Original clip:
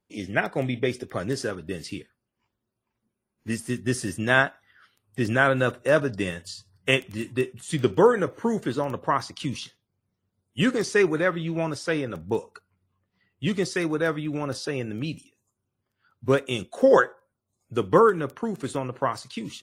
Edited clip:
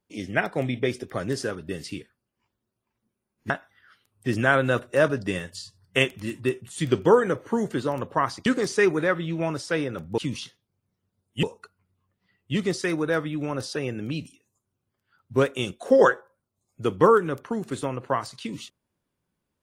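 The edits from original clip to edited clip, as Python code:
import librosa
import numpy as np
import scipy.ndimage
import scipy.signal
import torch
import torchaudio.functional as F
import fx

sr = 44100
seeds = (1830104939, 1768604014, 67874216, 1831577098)

y = fx.edit(x, sr, fx.cut(start_s=3.5, length_s=0.92),
    fx.move(start_s=9.38, length_s=1.25, to_s=12.35), tone=tone)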